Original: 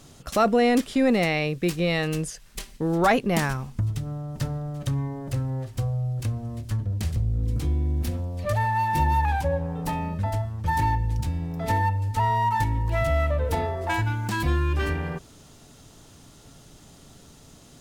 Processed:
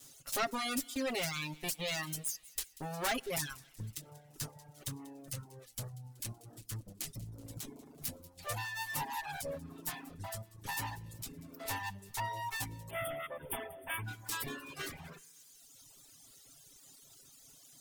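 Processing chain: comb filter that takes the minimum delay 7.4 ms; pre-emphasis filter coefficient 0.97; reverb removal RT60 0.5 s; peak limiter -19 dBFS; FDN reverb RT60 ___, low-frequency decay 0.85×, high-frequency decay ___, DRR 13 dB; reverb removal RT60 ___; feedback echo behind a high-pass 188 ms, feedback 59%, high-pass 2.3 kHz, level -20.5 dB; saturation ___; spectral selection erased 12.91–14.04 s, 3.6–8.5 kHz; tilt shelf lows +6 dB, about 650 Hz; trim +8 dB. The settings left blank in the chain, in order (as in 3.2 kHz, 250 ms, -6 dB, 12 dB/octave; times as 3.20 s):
1.4 s, 0.4×, 1.3 s, -27 dBFS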